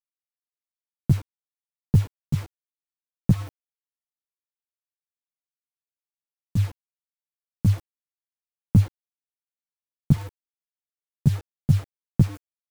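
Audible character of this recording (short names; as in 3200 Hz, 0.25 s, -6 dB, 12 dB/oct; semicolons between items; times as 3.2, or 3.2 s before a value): tremolo triangle 4.7 Hz, depth 85%; a quantiser's noise floor 8-bit, dither none; a shimmering, thickened sound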